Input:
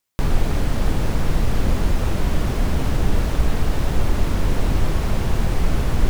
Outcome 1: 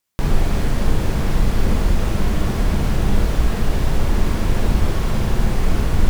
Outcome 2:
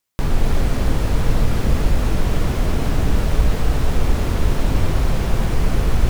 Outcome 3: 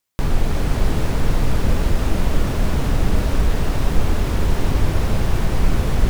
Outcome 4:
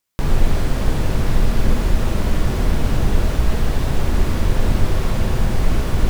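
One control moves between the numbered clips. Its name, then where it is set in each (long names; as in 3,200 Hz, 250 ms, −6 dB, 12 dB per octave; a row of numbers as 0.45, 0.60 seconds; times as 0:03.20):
reverb whose tail is shaped and stops, gate: 80, 300, 540, 120 milliseconds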